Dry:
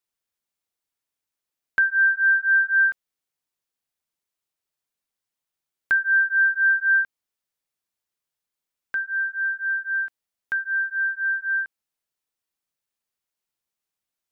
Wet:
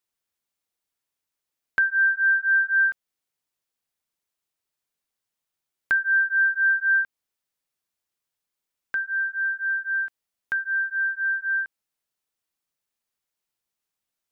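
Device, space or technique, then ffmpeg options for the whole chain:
parallel compression: -filter_complex "[0:a]asplit=2[s0][s1];[s1]acompressor=threshold=0.0398:ratio=6,volume=0.596[s2];[s0][s2]amix=inputs=2:normalize=0,volume=0.708"

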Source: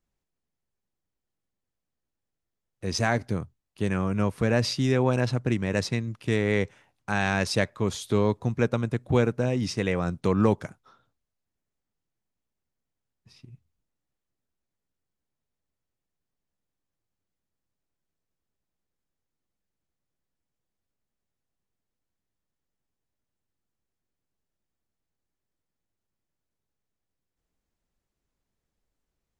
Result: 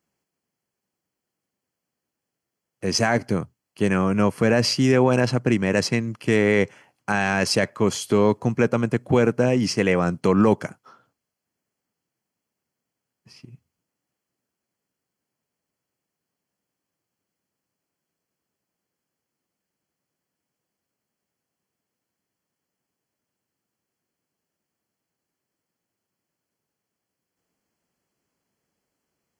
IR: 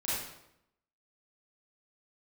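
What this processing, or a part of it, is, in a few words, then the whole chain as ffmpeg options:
PA system with an anti-feedback notch: -af "highpass=150,asuperstop=centerf=3700:order=4:qfactor=6.1,alimiter=limit=0.168:level=0:latency=1:release=11,volume=2.37"

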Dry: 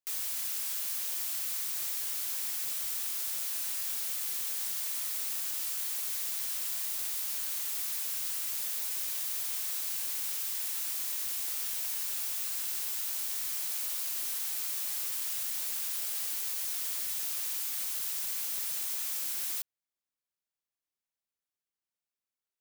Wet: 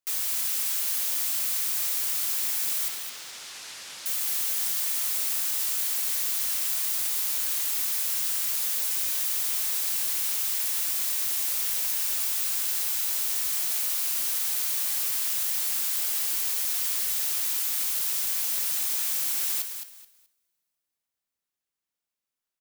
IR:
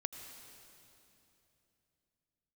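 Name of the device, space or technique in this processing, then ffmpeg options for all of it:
keyed gated reverb: -filter_complex "[0:a]asettb=1/sr,asplit=3[s0][s1][s2];[s0]atrim=end=2.884[s3];[s1]atrim=start=2.88:end=4.06,asetpts=PTS-STARTPTS,afade=t=in:d=0.004:c=qsin,afade=t=out:st=1.176:d=0.004:c=qsin,lowpass=5400[s4];[s2]atrim=start=4.056[s5];[s3][s4]acrossfade=d=0.004:c1=hsin:c2=qsin[s6];[s6][s5]acrossfade=d=0.004:c1=qsin:c2=hsin,asplit=3[s7][s8][s9];[1:a]atrim=start_sample=2205[s10];[s8][s10]afir=irnorm=-1:irlink=0[s11];[s9]apad=whole_len=997018[s12];[s11][s12]sidechaingate=range=0.112:threshold=0.00794:ratio=16:detection=peak,volume=0.668[s13];[s7][s13]amix=inputs=2:normalize=0,aecho=1:1:214|428|642:0.398|0.0955|0.0229,volume=1.33"

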